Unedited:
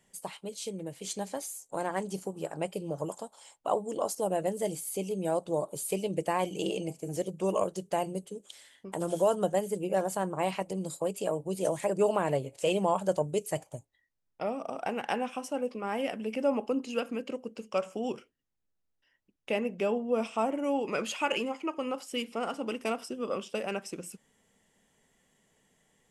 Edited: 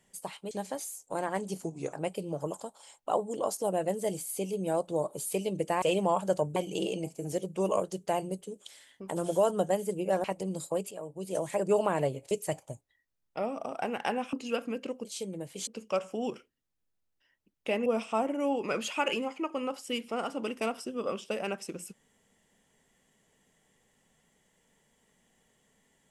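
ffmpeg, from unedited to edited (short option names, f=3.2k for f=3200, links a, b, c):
-filter_complex "[0:a]asplit=13[a][b][c][d][e][f][g][h][i][j][k][l][m];[a]atrim=end=0.512[n];[b]atrim=start=1.128:end=2.264[o];[c]atrim=start=2.26:end=2.51,asetpts=PTS-STARTPTS,asetrate=37926,aresample=44100[p];[d]atrim=start=2.506:end=6.402[q];[e]atrim=start=12.608:end=13.352[r];[f]atrim=start=6.398:end=10.082[s];[g]atrim=start=10.538:end=11.21,asetpts=PTS-STARTPTS,afade=t=out:st=0.668:d=0.004:c=hsin:silence=0.211349[t];[h]atrim=start=11.21:end=12.612,asetpts=PTS-STARTPTS,afade=t=in:d=0.72:silence=0.211349[u];[i]atrim=start=13.348:end=15.372[v];[j]atrim=start=16.768:end=17.492[w];[k]atrim=start=0.508:end=1.132[x];[l]atrim=start=17.488:end=19.682[y];[m]atrim=start=20.098[z];[n][o]acrossfade=d=0.004:c1=hsin:c2=hsin[aa];[aa][p]acrossfade=d=0.004:c1=hsin:c2=hsin[ab];[ab][q]acrossfade=d=0.004:c1=hsin:c2=hsin[ac];[ac][r]acrossfade=d=0.004:c1=hsin:c2=hsin[ad];[ad][s]acrossfade=d=0.004:c1=hsin:c2=hsin[ae];[t][u]concat=n=2:v=0:a=1[af];[ae][af]acrossfade=d=0.004:c1=hsin:c2=hsin[ag];[ag][v]acrossfade=d=0.004:c1=hsin:c2=hsin[ah];[ah][w]acrossfade=d=0.004:c1=hsin:c2=hsin[ai];[ai][x]acrossfade=d=0.004:c1=hsin:c2=hsin[aj];[aj][y]acrossfade=d=0.004:c1=hsin:c2=hsin[ak];[ak][z]acrossfade=d=0.004:c1=hsin:c2=hsin"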